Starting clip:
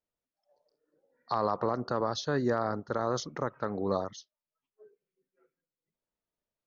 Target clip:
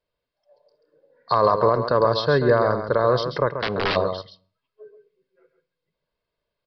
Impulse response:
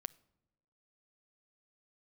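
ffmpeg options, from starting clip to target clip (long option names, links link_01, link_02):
-filter_complex "[0:a]aecho=1:1:1.9:0.53,aecho=1:1:135:0.376,asplit=3[link_01][link_02][link_03];[link_01]afade=type=out:start_time=3.51:duration=0.02[link_04];[link_02]aeval=exprs='(mod(18.8*val(0)+1,2)-1)/18.8':channel_layout=same,afade=type=in:start_time=3.51:duration=0.02,afade=type=out:start_time=3.95:duration=0.02[link_05];[link_03]afade=type=in:start_time=3.95:duration=0.02[link_06];[link_04][link_05][link_06]amix=inputs=3:normalize=0,asplit=2[link_07][link_08];[1:a]atrim=start_sample=2205,afade=type=out:start_time=0.36:duration=0.01,atrim=end_sample=16317[link_09];[link_08][link_09]afir=irnorm=-1:irlink=0,volume=9dB[link_10];[link_07][link_10]amix=inputs=2:normalize=0,aresample=11025,aresample=44100"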